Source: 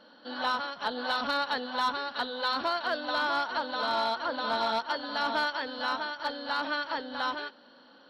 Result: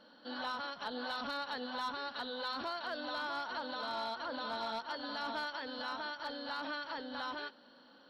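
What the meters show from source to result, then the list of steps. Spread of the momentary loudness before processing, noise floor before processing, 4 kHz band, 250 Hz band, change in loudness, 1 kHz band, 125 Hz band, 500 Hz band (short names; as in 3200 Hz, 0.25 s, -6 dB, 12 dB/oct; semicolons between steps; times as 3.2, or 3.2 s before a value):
5 LU, -56 dBFS, -8.0 dB, -6.0 dB, -9.0 dB, -9.5 dB, n/a, -8.5 dB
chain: tone controls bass +3 dB, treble +2 dB; limiter -26.5 dBFS, peak gain reduction 6 dB; gain -5 dB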